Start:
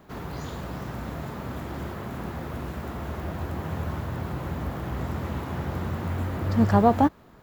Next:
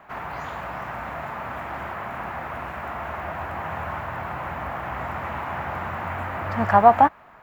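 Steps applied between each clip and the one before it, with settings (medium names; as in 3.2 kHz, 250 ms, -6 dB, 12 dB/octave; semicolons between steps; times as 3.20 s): high-order bell 1.3 kHz +15.5 dB 2.5 oct; trim -6.5 dB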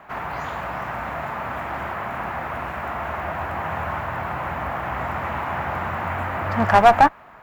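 one-sided clip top -14.5 dBFS; trim +3.5 dB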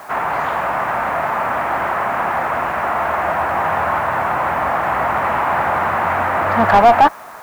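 overdrive pedal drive 20 dB, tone 1.1 kHz, clips at -1 dBFS; in parallel at -11 dB: word length cut 6-bit, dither triangular; on the sum: trim -1.5 dB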